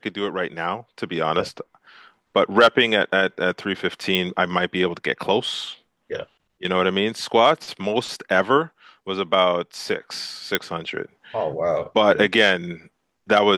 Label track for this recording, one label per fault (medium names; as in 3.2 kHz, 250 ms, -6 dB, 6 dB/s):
4.150000	4.150000	pop -8 dBFS
10.550000	10.550000	pop -4 dBFS